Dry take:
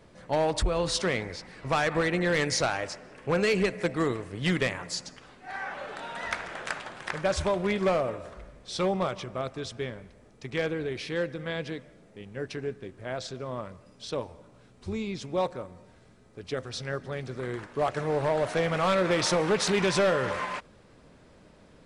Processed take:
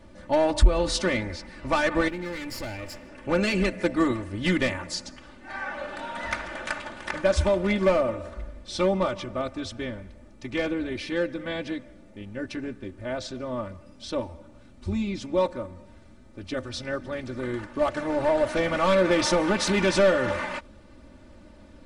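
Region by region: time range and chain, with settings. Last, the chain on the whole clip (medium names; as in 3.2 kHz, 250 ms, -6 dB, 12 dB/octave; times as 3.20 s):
2.08–3.09 s: comb filter that takes the minimum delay 0.4 ms + compression 3:1, threshold -37 dBFS
whole clip: tone controls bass +7 dB, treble -2 dB; comb 3.4 ms, depth 89%; endings held to a fixed fall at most 450 dB/s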